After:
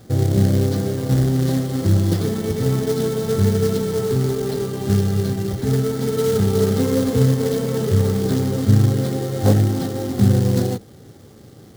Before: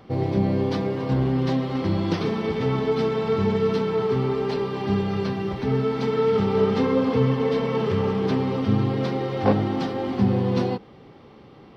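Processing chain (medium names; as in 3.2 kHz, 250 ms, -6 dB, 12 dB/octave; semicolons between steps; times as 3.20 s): companded quantiser 4-bit; fifteen-band graphic EQ 100 Hz +10 dB, 1 kHz -11 dB, 2.5 kHz -11 dB; trim +2 dB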